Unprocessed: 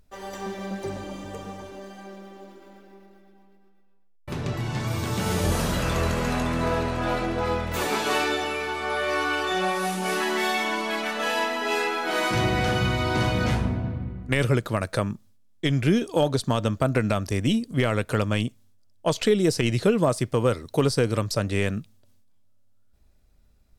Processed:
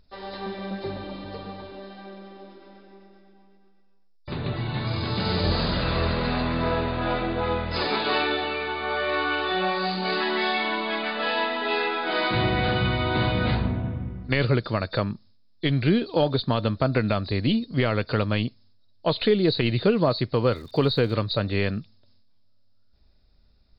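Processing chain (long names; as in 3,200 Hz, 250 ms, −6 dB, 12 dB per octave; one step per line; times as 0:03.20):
hearing-aid frequency compression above 3,500 Hz 4 to 1
0:20.51–0:21.13: surface crackle 160 per second −42 dBFS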